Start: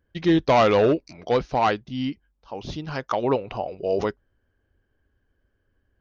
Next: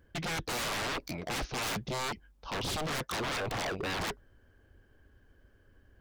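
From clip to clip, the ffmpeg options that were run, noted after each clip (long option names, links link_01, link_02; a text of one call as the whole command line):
ffmpeg -i in.wav -af "areverse,acompressor=threshold=-26dB:ratio=8,areverse,aeval=exprs='0.0141*(abs(mod(val(0)/0.0141+3,4)-2)-1)':channel_layout=same,volume=8dB" out.wav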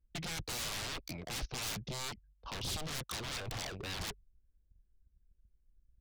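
ffmpeg -i in.wav -filter_complex "[0:a]anlmdn=0.0398,acrossover=split=140|3000[link_01][link_02][link_03];[link_02]acompressor=threshold=-43dB:ratio=6[link_04];[link_01][link_04][link_03]amix=inputs=3:normalize=0,volume=-1dB" out.wav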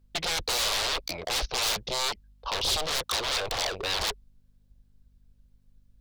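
ffmpeg -i in.wav -af "equalizer=frequency=125:width_type=o:width=1:gain=-12,equalizer=frequency=250:width_type=o:width=1:gain=-8,equalizer=frequency=500:width_type=o:width=1:gain=7,equalizer=frequency=1000:width_type=o:width=1:gain=4,equalizer=frequency=4000:width_type=o:width=1:gain=6,aeval=exprs='val(0)+0.000251*(sin(2*PI*50*n/s)+sin(2*PI*2*50*n/s)/2+sin(2*PI*3*50*n/s)/3+sin(2*PI*4*50*n/s)/4+sin(2*PI*5*50*n/s)/5)':channel_layout=same,volume=8.5dB" out.wav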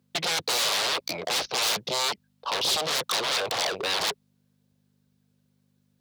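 ffmpeg -i in.wav -filter_complex "[0:a]highpass=frequency=130:width=0.5412,highpass=frequency=130:width=1.3066,asplit=2[link_01][link_02];[link_02]asoftclip=type=hard:threshold=-31dB,volume=-5dB[link_03];[link_01][link_03]amix=inputs=2:normalize=0" out.wav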